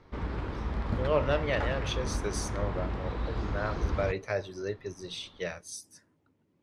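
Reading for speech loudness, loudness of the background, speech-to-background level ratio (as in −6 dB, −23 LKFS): −34.5 LKFS, −35.0 LKFS, 0.5 dB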